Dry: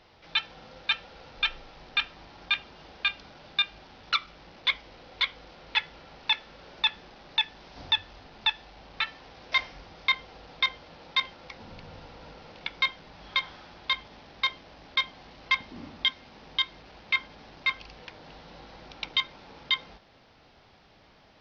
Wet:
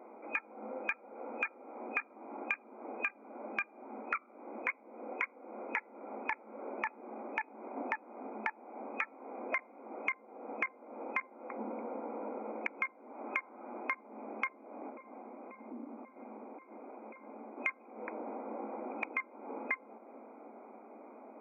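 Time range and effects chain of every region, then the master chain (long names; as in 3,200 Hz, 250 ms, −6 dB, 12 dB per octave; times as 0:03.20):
0:14.90–0:17.58: tube saturation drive 29 dB, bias 0.65 + downward compressor, threshold −50 dBFS
whole clip: adaptive Wiener filter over 25 samples; brick-wall band-pass 210–2,500 Hz; downward compressor 8 to 1, threshold −45 dBFS; level +11 dB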